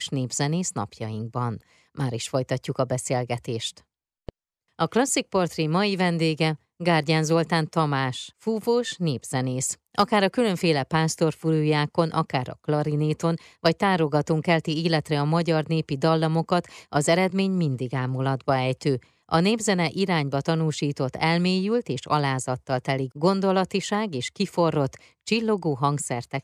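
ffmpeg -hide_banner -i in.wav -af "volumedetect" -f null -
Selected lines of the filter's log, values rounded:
mean_volume: -24.4 dB
max_volume: -5.9 dB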